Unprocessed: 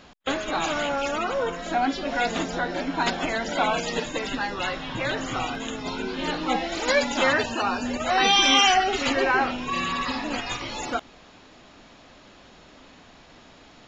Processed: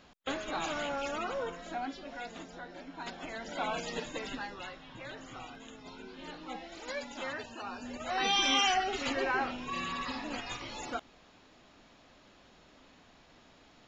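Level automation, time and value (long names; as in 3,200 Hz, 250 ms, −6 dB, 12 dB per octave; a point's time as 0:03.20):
0:01.31 −9 dB
0:02.31 −18.5 dB
0:02.96 −18.5 dB
0:03.77 −10 dB
0:04.31 −10 dB
0:04.77 −17.5 dB
0:07.53 −17.5 dB
0:08.35 −9.5 dB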